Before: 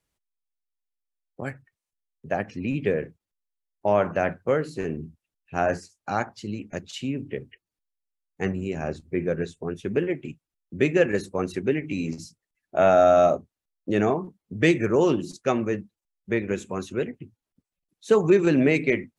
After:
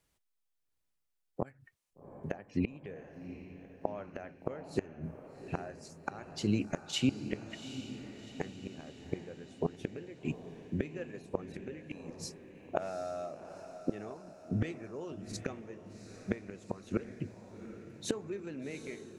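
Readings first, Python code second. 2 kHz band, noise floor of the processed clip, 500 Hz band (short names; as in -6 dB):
-16.5 dB, -80 dBFS, -17.5 dB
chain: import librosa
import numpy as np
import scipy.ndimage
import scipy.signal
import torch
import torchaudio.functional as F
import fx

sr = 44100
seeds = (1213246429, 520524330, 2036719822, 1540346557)

y = fx.gate_flip(x, sr, shuts_db=-20.0, range_db=-25)
y = fx.echo_diffused(y, sr, ms=769, feedback_pct=54, wet_db=-11.0)
y = y * 10.0 ** (2.5 / 20.0)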